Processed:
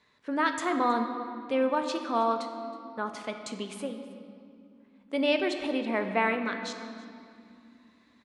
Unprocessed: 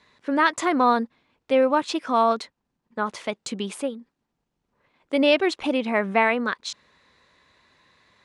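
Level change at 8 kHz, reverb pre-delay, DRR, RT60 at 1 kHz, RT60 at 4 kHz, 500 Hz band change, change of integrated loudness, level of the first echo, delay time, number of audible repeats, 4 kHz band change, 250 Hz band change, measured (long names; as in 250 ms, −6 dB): −7.0 dB, 4 ms, 5.5 dB, 2.4 s, 1.7 s, −6.5 dB, −7.0 dB, −20.5 dB, 320 ms, 1, −6.5 dB, −5.5 dB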